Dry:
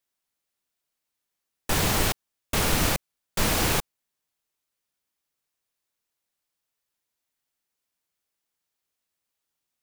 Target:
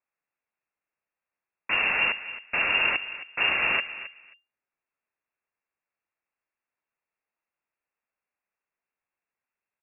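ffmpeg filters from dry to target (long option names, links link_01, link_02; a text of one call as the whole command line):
ffmpeg -i in.wav -filter_complex "[0:a]asplit=2[link_01][link_02];[link_02]adelay=267,lowpass=frequency=1700:poles=1,volume=-13dB,asplit=2[link_03][link_04];[link_04]adelay=267,lowpass=frequency=1700:poles=1,volume=0.2[link_05];[link_03][link_05]amix=inputs=2:normalize=0[link_06];[link_01][link_06]amix=inputs=2:normalize=0,lowpass=frequency=2400:width_type=q:width=0.5098,lowpass=frequency=2400:width_type=q:width=0.6013,lowpass=frequency=2400:width_type=q:width=0.9,lowpass=frequency=2400:width_type=q:width=2.563,afreqshift=-2800" out.wav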